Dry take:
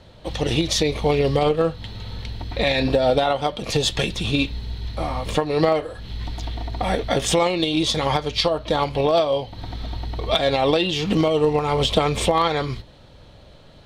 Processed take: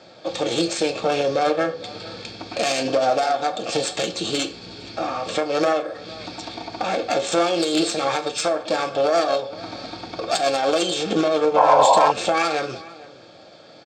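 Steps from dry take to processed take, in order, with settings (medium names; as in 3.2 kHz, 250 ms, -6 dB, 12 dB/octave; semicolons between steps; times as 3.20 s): self-modulated delay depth 0.21 ms; high-pass 250 Hz 12 dB/octave; in parallel at +1 dB: compression, threshold -30 dBFS, peak gain reduction 15 dB; on the sum: resampled via 16 kHz; formant shift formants +2 st; saturation -7 dBFS, distortion -20 dB; comb of notches 990 Hz; echo from a far wall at 78 m, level -19 dB; reverberation RT60 0.50 s, pre-delay 3 ms, DRR 7 dB; painted sound noise, 11.56–12.12 s, 510–1100 Hz -13 dBFS; trim -1.5 dB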